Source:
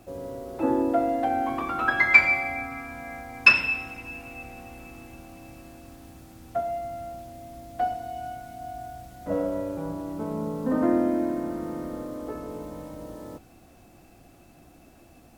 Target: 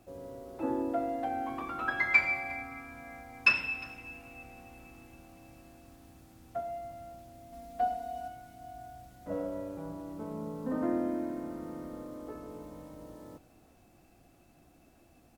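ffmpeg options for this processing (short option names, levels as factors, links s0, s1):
-filter_complex "[0:a]asettb=1/sr,asplit=3[s0][s1][s2];[s0]atrim=end=7.524[s3];[s1]atrim=start=7.52:end=8.28,asetpts=PTS-STARTPTS,afade=t=in:d=0.004:c=qsin,afade=t=out:st=0.756:d=0.004:c=qsin,aecho=1:1:4.3:0.93,atrim=end_sample=33516[s4];[s2]atrim=start=8.276[s5];[s3][s4]acrossfade=d=0.004:c1=hsin:c2=qsin[s6];[s6][s5]acrossfade=d=0.004:c1=qsin:c2=hsin,aecho=1:1:356:0.106,volume=0.376"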